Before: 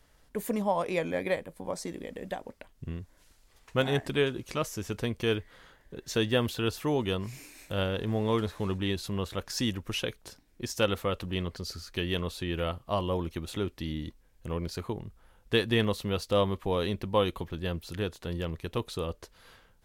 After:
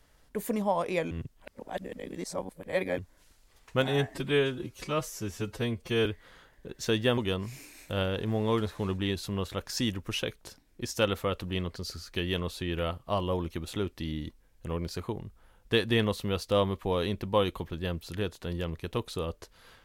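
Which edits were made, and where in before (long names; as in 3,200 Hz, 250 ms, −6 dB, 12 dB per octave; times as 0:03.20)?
0:01.11–0:02.98: reverse
0:03.88–0:05.33: time-stretch 1.5×
0:06.45–0:06.98: remove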